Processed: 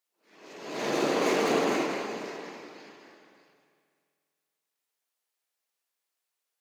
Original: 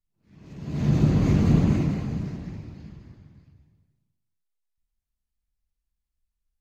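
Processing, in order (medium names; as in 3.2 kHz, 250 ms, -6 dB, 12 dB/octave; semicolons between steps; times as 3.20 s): tracing distortion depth 0.04 ms; high-pass 410 Hz 24 dB/octave; spring tank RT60 2.2 s, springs 48 ms, chirp 70 ms, DRR 9 dB; trim +8.5 dB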